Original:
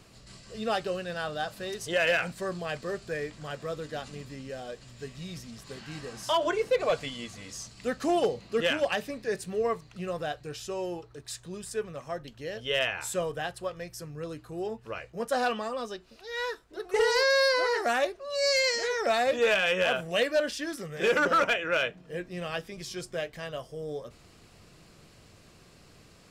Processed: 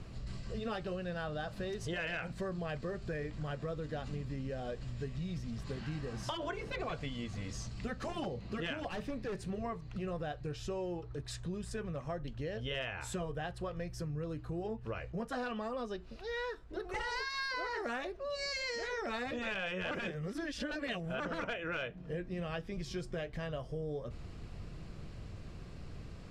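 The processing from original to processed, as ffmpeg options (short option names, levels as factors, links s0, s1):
-filter_complex "[0:a]asettb=1/sr,asplit=3[s0][s1][s2];[s0]atrim=end=8.884[s3];[s1]atrim=start=8.88:end=9.44,asetpts=PTS-STARTPTS,afade=t=in:d=0.004:c=qsin,afade=t=out:st=0.556:d=0.004:c=qsin,volume=47.3,asoftclip=hard,volume=0.0211[s4];[s2]atrim=start=9.436[s5];[s3][s4]acrossfade=d=0.004:c1=hsin:c2=qsin[s6];[s6][s5]acrossfade=d=0.004:c1=qsin:c2=hsin,asplit=3[s7][s8][s9];[s7]atrim=end=19.912[s10];[s8]atrim=start=19.908:end=21.202,asetpts=PTS-STARTPTS,areverse[s11];[s9]atrim=start=21.198[s12];[s10][s11]acrossfade=d=0.004:c1=hsin:c2=hsin[s13];[s13][s12]acrossfade=d=0.004:c1=hsin:c2=hsin,aemphasis=mode=reproduction:type=bsi,afftfilt=real='re*lt(hypot(re,im),0.398)':imag='im*lt(hypot(re,im),0.398)':win_size=1024:overlap=0.75,acompressor=threshold=0.0141:ratio=5,volume=1.12"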